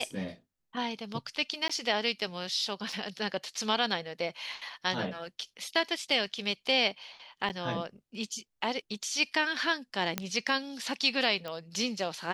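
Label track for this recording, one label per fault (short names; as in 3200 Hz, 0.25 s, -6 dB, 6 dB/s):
1.680000	1.700000	gap 15 ms
2.920000	2.920000	gap 4.5 ms
7.490000	7.500000	gap 8.3 ms
10.180000	10.180000	pop -13 dBFS
11.480000	11.480000	pop -24 dBFS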